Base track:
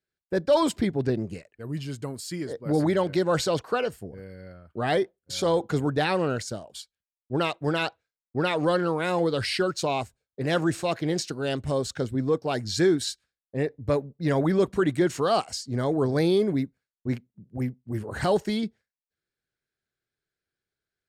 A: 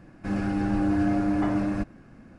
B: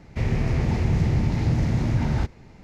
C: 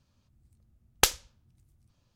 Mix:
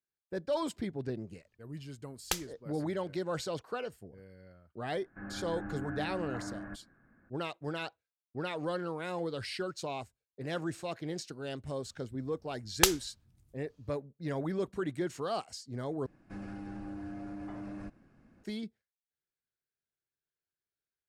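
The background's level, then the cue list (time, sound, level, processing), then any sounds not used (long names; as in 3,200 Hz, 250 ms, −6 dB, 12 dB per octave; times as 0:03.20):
base track −11.5 dB
0:01.28: mix in C −10.5 dB
0:04.92: mix in A −6 dB + transistor ladder low-pass 1,800 Hz, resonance 65%
0:11.80: mix in C −1.5 dB
0:16.06: overwrite with A −13 dB + downward compressor, threshold −25 dBFS
not used: B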